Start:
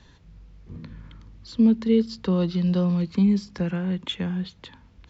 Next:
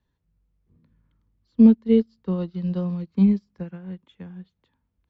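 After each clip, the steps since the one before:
high-shelf EQ 2,200 Hz −8.5 dB
expander for the loud parts 2.5 to 1, over −33 dBFS
level +6 dB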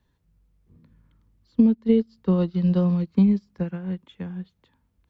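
downward compressor 12 to 1, threshold −20 dBFS, peak gain reduction 12.5 dB
level +6 dB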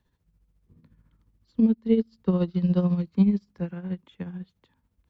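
amplitude tremolo 14 Hz, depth 57%

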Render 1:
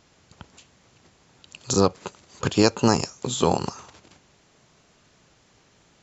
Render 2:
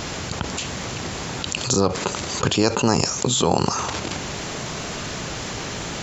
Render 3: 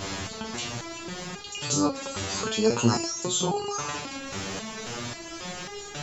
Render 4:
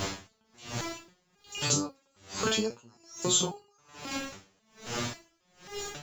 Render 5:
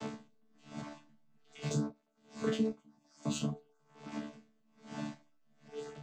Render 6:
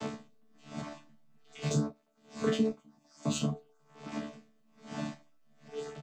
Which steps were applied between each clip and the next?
envelope flattener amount 70%; level −2 dB
step-sequenced resonator 3.7 Hz 97–410 Hz; level +6 dB
in parallel at −9 dB: bit-depth reduction 8 bits, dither triangular; on the sum: tremolo with a sine in dB 1.2 Hz, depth 39 dB
channel vocoder with a chord as carrier bare fifth, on D3; in parallel at −9 dB: slack as between gear wheels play −31.5 dBFS; on the sum: level −7 dB
double-tracking delay 12 ms −13 dB; level +4 dB

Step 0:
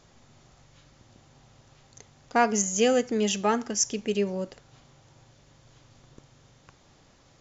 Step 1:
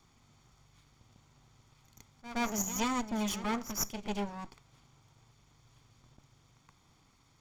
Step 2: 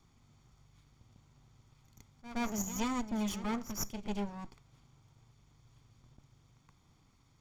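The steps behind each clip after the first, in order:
lower of the sound and its delayed copy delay 0.88 ms; echo ahead of the sound 121 ms −13.5 dB; level that may rise only so fast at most 400 dB per second; level −6.5 dB
low-shelf EQ 310 Hz +7 dB; level −5 dB

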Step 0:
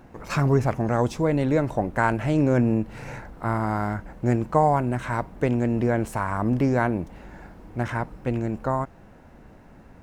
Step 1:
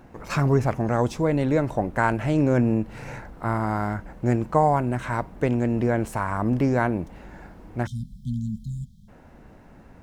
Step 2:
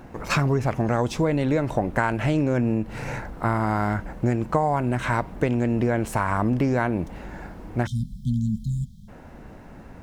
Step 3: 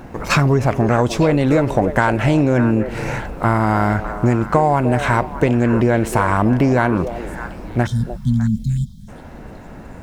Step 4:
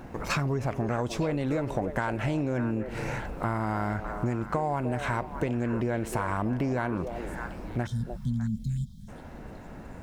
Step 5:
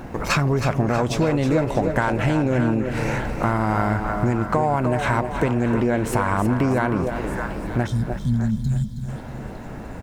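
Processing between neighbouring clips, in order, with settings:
time-frequency box erased 0:07.87–0:09.09, 250–3,100 Hz
dynamic equaliser 3,100 Hz, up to +4 dB, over −42 dBFS, Q 0.99; downward compressor, threshold −24 dBFS, peak gain reduction 10 dB; level +5.5 dB
in parallel at −11 dB: hard clipping −16.5 dBFS, distortion −17 dB; on the sum: echo through a band-pass that steps 302 ms, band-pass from 500 Hz, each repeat 1.4 octaves, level −6.5 dB; level +5 dB
downward compressor 2 to 1, threshold −23 dBFS, peak gain reduction 7.5 dB; level −7 dB
repeating echo 320 ms, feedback 47%, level −9.5 dB; level +8 dB

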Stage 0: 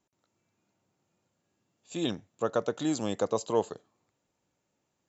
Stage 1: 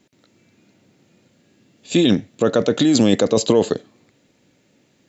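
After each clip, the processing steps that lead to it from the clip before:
octave-band graphic EQ 125/250/500/1,000/2,000/4,000 Hz +5/+10/+5/−5/+8/+7 dB
in parallel at +2.5 dB: compressor whose output falls as the input rises −25 dBFS, ratio −0.5
on the sum: level +2.5 dB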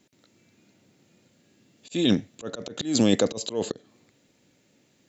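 high-shelf EQ 4,800 Hz +5.5 dB
volume swells 204 ms
level −5 dB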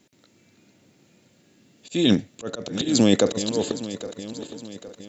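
feedback delay that plays each chunk backwards 407 ms, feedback 68%, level −12 dB
level +3 dB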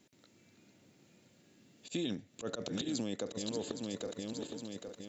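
downward compressor 16 to 1, threshold −27 dBFS, peak gain reduction 16.5 dB
level −6 dB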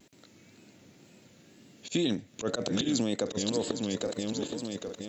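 pitch vibrato 2 Hz 73 cents
level +8 dB

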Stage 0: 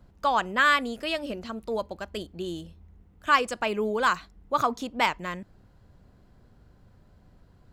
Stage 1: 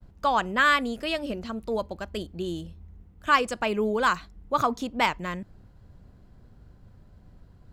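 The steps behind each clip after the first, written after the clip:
downward expander −55 dBFS
low-shelf EQ 230 Hz +6 dB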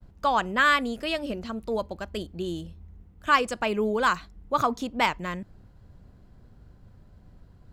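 no processing that can be heard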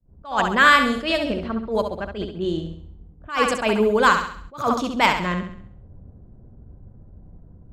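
low-pass that shuts in the quiet parts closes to 500 Hz, open at −23 dBFS
flutter between parallel walls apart 11.5 metres, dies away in 0.57 s
level that may rise only so fast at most 160 dB per second
level +6.5 dB

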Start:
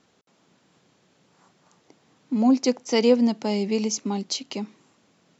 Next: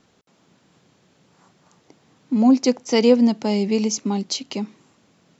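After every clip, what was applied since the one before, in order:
low-shelf EQ 130 Hz +7.5 dB
level +2.5 dB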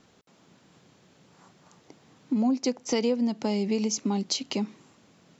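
downward compressor 4 to 1, threshold −24 dBFS, peak gain reduction 12.5 dB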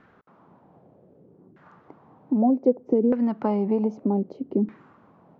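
auto-filter low-pass saw down 0.64 Hz 320–1,700 Hz
level +2.5 dB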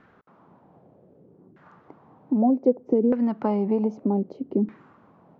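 no processing that can be heard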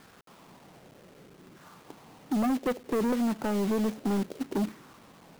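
log-companded quantiser 4 bits
gain into a clipping stage and back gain 23 dB
level −1 dB

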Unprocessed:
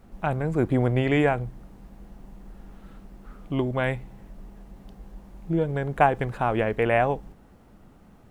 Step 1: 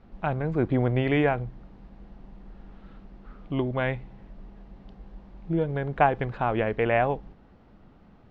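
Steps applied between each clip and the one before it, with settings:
low-pass filter 4,600 Hz 24 dB per octave
level −1.5 dB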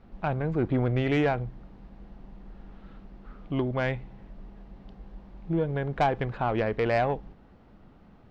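soft clipping −16.5 dBFS, distortion −15 dB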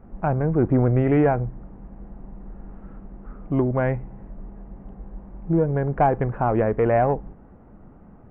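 Gaussian smoothing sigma 5.1 samples
level +7 dB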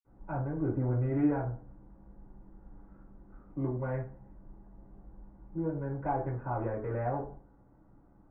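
convolution reverb RT60 0.40 s, pre-delay 46 ms
level +2.5 dB

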